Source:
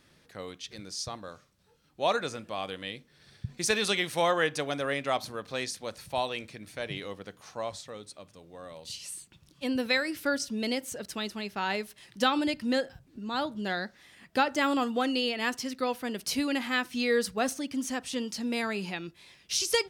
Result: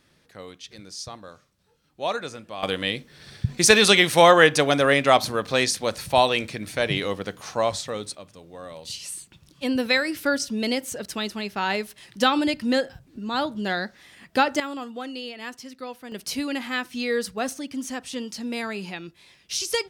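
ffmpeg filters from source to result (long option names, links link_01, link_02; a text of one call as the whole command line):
ffmpeg -i in.wav -af "asetnsamples=nb_out_samples=441:pad=0,asendcmd='2.63 volume volume 12dB;8.15 volume volume 5.5dB;14.6 volume volume -6dB;16.12 volume volume 1dB',volume=0dB" out.wav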